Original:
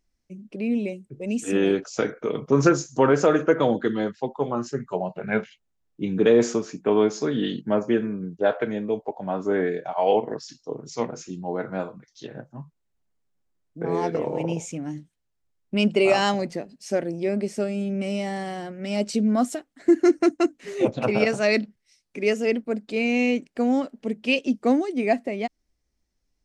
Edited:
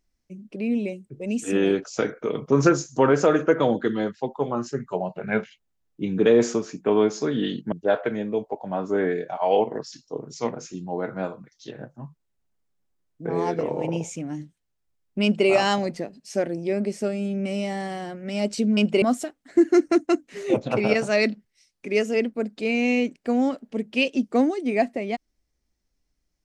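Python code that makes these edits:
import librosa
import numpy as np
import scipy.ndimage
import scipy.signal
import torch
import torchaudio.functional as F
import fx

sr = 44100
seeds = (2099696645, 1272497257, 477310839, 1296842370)

y = fx.edit(x, sr, fx.cut(start_s=7.72, length_s=0.56),
    fx.duplicate(start_s=15.79, length_s=0.25, to_s=19.33), tone=tone)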